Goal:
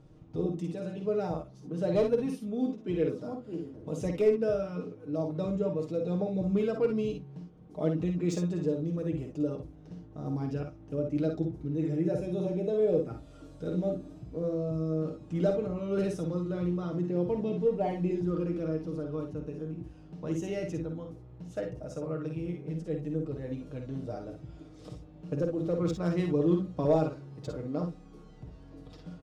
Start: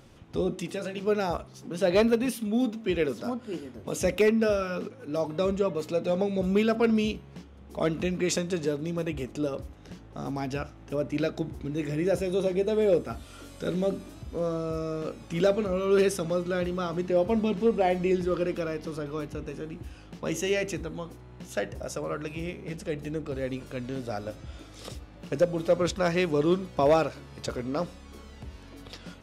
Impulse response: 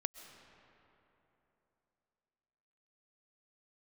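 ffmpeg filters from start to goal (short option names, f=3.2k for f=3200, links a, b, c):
-filter_complex "[0:a]adynamicsmooth=sensitivity=1:basefreq=4.8k,equalizer=f=2.2k:w=0.42:g=-14,aecho=1:1:6.5:0.65,asplit=2[a][b];[b]aecho=0:1:51|63:0.473|0.335[c];[a][c]amix=inputs=2:normalize=0,volume=-2.5dB"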